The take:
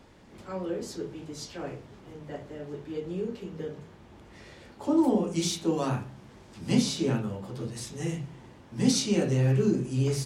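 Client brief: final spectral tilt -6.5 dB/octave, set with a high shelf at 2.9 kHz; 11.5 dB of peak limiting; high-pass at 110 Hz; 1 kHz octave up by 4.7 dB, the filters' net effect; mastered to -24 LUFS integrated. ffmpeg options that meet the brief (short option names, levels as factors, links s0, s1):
-af "highpass=110,equalizer=f=1000:t=o:g=7,highshelf=f=2900:g=-9,volume=3.35,alimiter=limit=0.237:level=0:latency=1"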